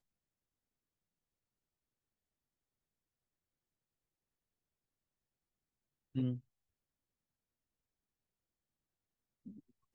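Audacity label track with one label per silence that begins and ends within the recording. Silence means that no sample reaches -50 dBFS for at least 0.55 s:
6.390000	9.460000	silence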